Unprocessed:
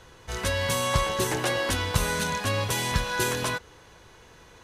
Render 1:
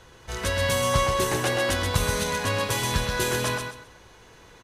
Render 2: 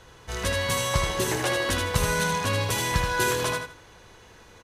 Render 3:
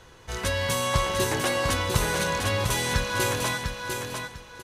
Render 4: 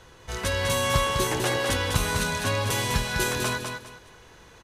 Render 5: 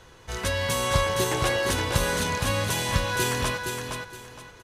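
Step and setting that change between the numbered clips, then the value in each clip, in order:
repeating echo, delay time: 130, 79, 699, 202, 466 milliseconds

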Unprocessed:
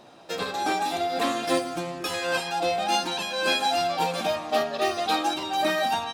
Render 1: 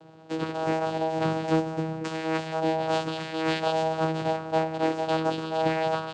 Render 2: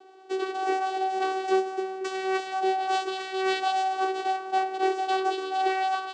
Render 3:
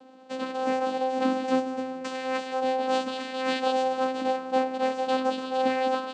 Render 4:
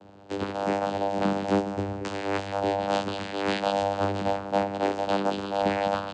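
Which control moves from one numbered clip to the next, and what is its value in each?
channel vocoder, frequency: 160, 380, 260, 99 Hertz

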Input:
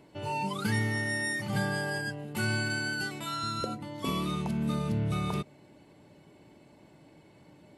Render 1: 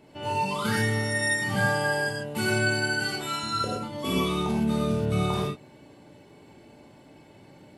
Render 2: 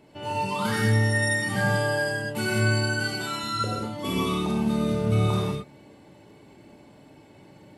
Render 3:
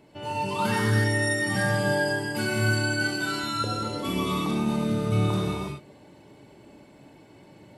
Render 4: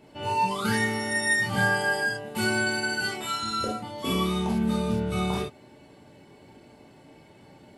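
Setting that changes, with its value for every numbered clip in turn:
reverb whose tail is shaped and stops, gate: 150, 230, 390, 90 milliseconds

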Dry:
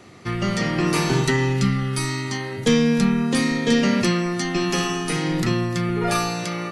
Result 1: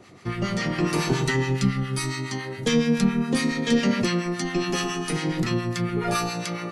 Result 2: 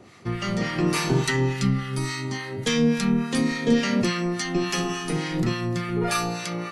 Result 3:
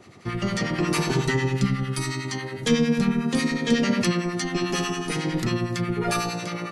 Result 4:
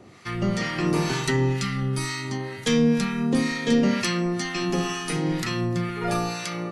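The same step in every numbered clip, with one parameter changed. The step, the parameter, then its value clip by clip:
two-band tremolo in antiphase, speed: 7.2, 3.5, 11, 2.1 Hertz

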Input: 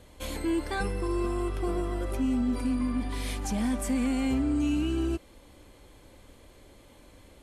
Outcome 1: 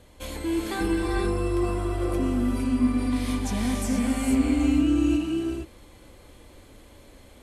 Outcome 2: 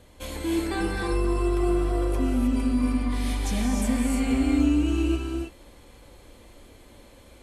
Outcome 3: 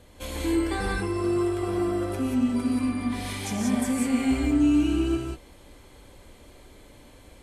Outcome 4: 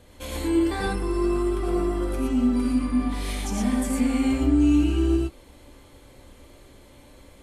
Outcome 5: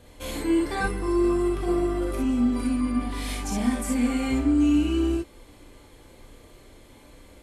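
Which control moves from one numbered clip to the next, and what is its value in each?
reverb whose tail is shaped and stops, gate: 500, 340, 210, 140, 80 milliseconds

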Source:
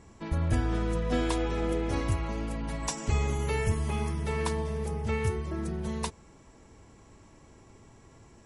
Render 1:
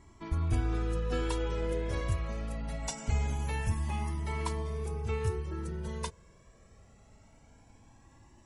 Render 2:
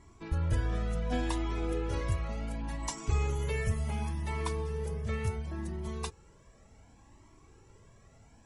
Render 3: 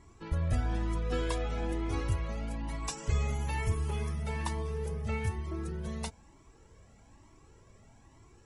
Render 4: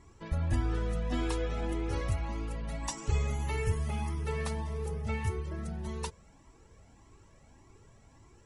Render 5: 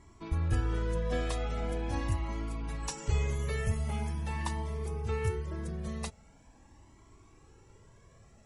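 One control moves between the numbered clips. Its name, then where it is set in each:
flanger whose copies keep moving one way, speed: 0.23, 0.69, 1.1, 1.7, 0.43 Hertz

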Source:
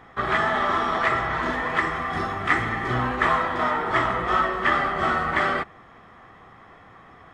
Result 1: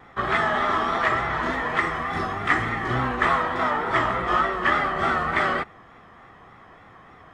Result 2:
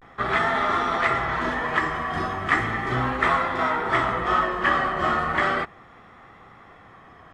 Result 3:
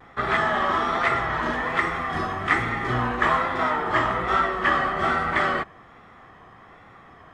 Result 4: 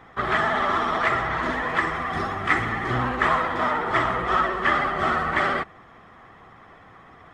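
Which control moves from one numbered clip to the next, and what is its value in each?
pitch vibrato, speed: 3.4, 0.36, 1.2, 16 Hertz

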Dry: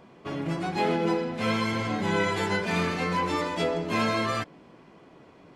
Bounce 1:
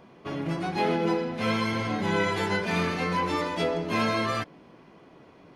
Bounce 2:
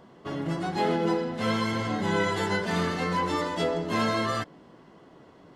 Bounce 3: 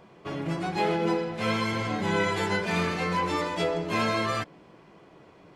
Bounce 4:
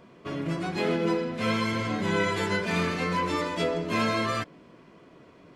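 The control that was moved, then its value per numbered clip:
notch filter, centre frequency: 7,600, 2,400, 250, 810 Hertz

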